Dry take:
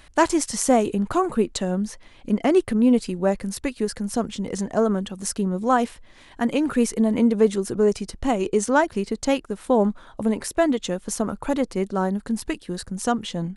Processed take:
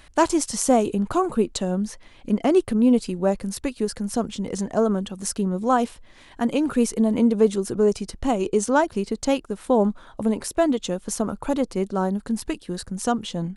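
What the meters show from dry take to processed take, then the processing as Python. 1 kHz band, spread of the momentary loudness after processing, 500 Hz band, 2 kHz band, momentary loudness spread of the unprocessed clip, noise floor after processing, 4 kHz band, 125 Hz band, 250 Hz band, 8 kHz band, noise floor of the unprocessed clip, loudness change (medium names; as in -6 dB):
-0.5 dB, 8 LU, 0.0 dB, -3.0 dB, 8 LU, -50 dBFS, -0.5 dB, 0.0 dB, 0.0 dB, 0.0 dB, -50 dBFS, 0.0 dB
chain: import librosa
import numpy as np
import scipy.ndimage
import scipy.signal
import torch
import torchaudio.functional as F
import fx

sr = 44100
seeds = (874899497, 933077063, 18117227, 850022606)

y = fx.dynamic_eq(x, sr, hz=1900.0, q=2.4, threshold_db=-46.0, ratio=4.0, max_db=-6)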